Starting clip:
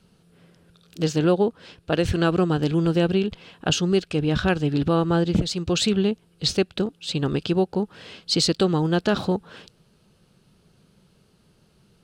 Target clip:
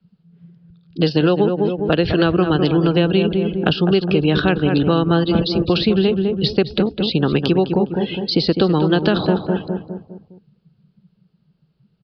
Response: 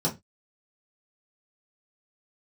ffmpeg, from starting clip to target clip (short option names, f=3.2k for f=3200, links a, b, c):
-filter_complex "[0:a]afftdn=nr=26:nf=-40,asplit=2[a][b];[b]adelay=204,lowpass=f=960:p=1,volume=-7dB,asplit=2[c][d];[d]adelay=204,lowpass=f=960:p=1,volume=0.46,asplit=2[e][f];[f]adelay=204,lowpass=f=960:p=1,volume=0.46,asplit=2[g][h];[h]adelay=204,lowpass=f=960:p=1,volume=0.46,asplit=2[i][j];[j]adelay=204,lowpass=f=960:p=1,volume=0.46[k];[a][c][e][g][i][k]amix=inputs=6:normalize=0,asplit=2[l][m];[m]acompressor=threshold=-32dB:ratio=5,volume=1dB[n];[l][n]amix=inputs=2:normalize=0,aresample=11025,aresample=44100,acrossover=split=150|480|1600[o][p][q][r];[o]acompressor=threshold=-37dB:ratio=4[s];[p]acompressor=threshold=-23dB:ratio=4[t];[q]acompressor=threshold=-30dB:ratio=4[u];[r]acompressor=threshold=-36dB:ratio=4[v];[s][t][u][v]amix=inputs=4:normalize=0,adynamicequalizer=threshold=0.00631:dfrequency=1800:dqfactor=0.7:tfrequency=1800:tqfactor=0.7:attack=5:release=100:ratio=0.375:range=2:mode=boostabove:tftype=highshelf,volume=7.5dB"